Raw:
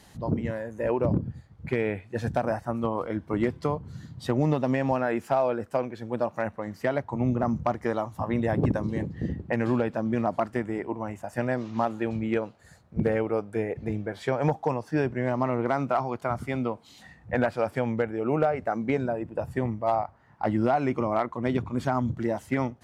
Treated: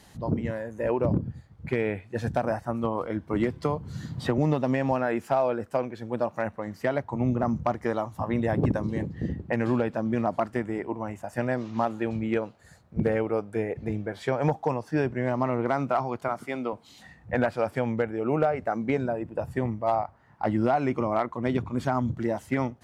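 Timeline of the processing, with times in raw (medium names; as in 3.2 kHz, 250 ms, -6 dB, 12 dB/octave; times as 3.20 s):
3.35–4.38 s: three bands compressed up and down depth 70%
16.28–16.73 s: high-pass 270 Hz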